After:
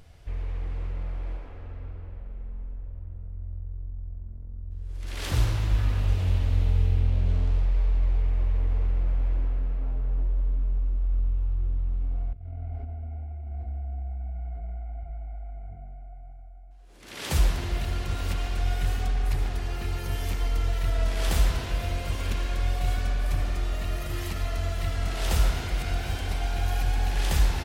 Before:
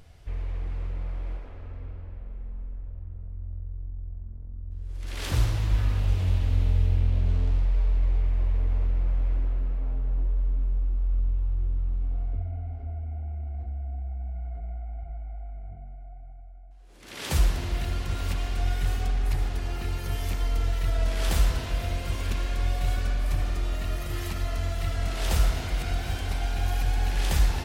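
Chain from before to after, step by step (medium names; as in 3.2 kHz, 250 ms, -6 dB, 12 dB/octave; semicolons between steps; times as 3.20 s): speakerphone echo 140 ms, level -7 dB; 12.33–13.53 s: compressor with a negative ratio -34 dBFS, ratio -0.5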